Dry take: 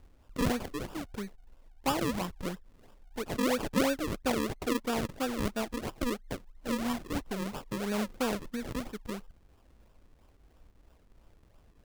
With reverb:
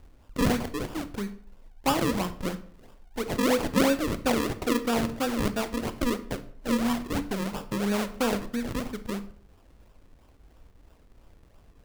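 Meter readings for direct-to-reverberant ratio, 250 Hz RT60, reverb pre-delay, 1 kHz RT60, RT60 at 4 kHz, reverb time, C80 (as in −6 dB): 11.0 dB, 0.60 s, 21 ms, 0.55 s, 0.40 s, 0.60 s, 18.0 dB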